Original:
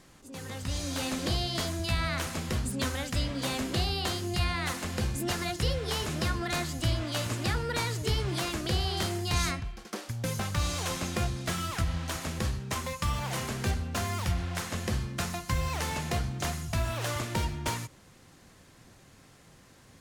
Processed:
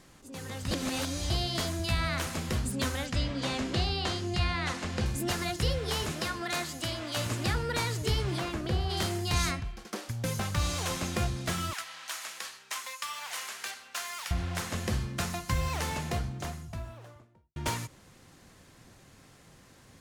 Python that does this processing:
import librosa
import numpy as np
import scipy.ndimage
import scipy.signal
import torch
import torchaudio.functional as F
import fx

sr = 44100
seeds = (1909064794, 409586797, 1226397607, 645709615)

y = fx.lowpass(x, sr, hz=6400.0, slope=12, at=(3.06, 5.06))
y = fx.highpass(y, sr, hz=340.0, slope=6, at=(6.12, 7.17))
y = fx.high_shelf(y, sr, hz=fx.line((8.36, 4400.0), (8.89, 2200.0)), db=-12.0, at=(8.36, 8.89), fade=0.02)
y = fx.highpass(y, sr, hz=1200.0, slope=12, at=(11.73, 14.31))
y = fx.studio_fade_out(y, sr, start_s=15.69, length_s=1.87)
y = fx.edit(y, sr, fx.reverse_span(start_s=0.71, length_s=0.59), tone=tone)